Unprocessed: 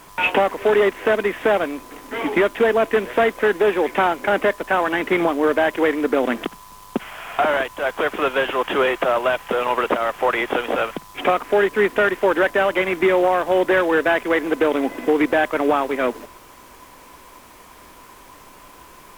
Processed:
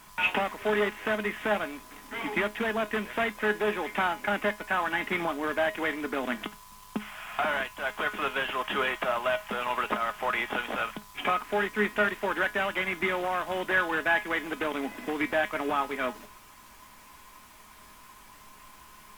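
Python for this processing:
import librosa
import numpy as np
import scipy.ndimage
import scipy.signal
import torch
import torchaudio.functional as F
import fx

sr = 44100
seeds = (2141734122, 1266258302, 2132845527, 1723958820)

y = fx.peak_eq(x, sr, hz=450.0, db=-11.0, octaves=1.2)
y = fx.comb_fb(y, sr, f0_hz=210.0, decay_s=0.21, harmonics='all', damping=0.0, mix_pct=70)
y = F.gain(torch.from_numpy(y), 2.0).numpy()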